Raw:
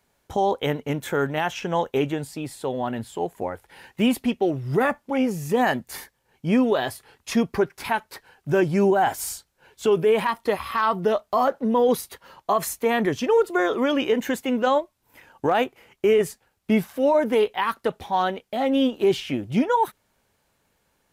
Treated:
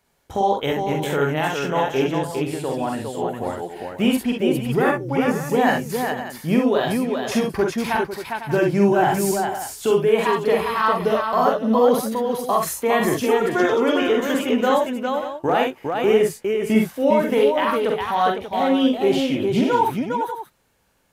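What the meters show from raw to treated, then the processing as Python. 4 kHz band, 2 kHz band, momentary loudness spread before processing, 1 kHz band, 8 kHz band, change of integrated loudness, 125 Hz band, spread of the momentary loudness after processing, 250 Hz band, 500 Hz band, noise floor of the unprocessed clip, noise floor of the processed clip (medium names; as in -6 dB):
+3.5 dB, +3.5 dB, 10 LU, +3.5 dB, +3.5 dB, +3.0 dB, +3.5 dB, 8 LU, +3.5 dB, +3.0 dB, -71 dBFS, -50 dBFS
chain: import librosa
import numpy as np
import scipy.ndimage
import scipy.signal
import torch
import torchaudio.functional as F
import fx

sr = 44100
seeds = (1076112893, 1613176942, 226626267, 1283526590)

y = fx.spec_box(x, sr, start_s=4.32, length_s=0.37, low_hz=600.0, high_hz=5200.0, gain_db=-16)
y = fx.echo_multitap(y, sr, ms=(45, 64, 406, 502, 586), db=(-3.5, -6.5, -4.0, -11.5, -12.0))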